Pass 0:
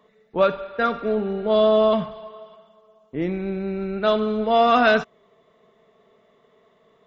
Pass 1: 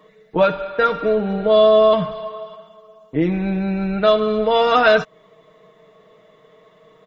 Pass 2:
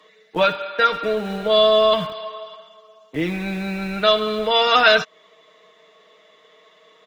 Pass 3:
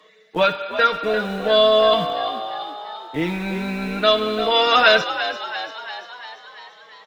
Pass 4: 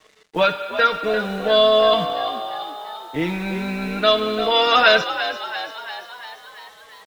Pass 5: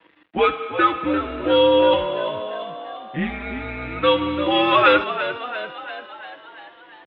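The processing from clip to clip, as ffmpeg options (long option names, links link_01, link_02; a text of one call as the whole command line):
ffmpeg -i in.wav -filter_complex "[0:a]aecho=1:1:6.4:0.7,asplit=2[link_01][link_02];[link_02]acompressor=threshold=-23dB:ratio=6,volume=2dB[link_03];[link_01][link_03]amix=inputs=2:normalize=0,volume=-1dB" out.wav
ffmpeg -i in.wav -filter_complex "[0:a]equalizer=frequency=4300:width=0.34:gain=14,acrossover=split=190|880|2100[link_01][link_02][link_03][link_04];[link_01]acrusher=bits=5:mix=0:aa=0.000001[link_05];[link_05][link_02][link_03][link_04]amix=inputs=4:normalize=0,volume=-6dB" out.wav
ffmpeg -i in.wav -filter_complex "[0:a]asplit=8[link_01][link_02][link_03][link_04][link_05][link_06][link_07][link_08];[link_02]adelay=343,afreqshift=60,volume=-11dB[link_09];[link_03]adelay=686,afreqshift=120,volume=-15.3dB[link_10];[link_04]adelay=1029,afreqshift=180,volume=-19.6dB[link_11];[link_05]adelay=1372,afreqshift=240,volume=-23.9dB[link_12];[link_06]adelay=1715,afreqshift=300,volume=-28.2dB[link_13];[link_07]adelay=2058,afreqshift=360,volume=-32.5dB[link_14];[link_08]adelay=2401,afreqshift=420,volume=-36.8dB[link_15];[link_01][link_09][link_10][link_11][link_12][link_13][link_14][link_15]amix=inputs=8:normalize=0" out.wav
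ffmpeg -i in.wav -af "acrusher=bits=7:mix=0:aa=0.5" out.wav
ffmpeg -i in.wav -af "highpass=frequency=260:width_type=q:width=0.5412,highpass=frequency=260:width_type=q:width=1.307,lowpass=frequency=3300:width_type=q:width=0.5176,lowpass=frequency=3300:width_type=q:width=0.7071,lowpass=frequency=3300:width_type=q:width=1.932,afreqshift=-130" out.wav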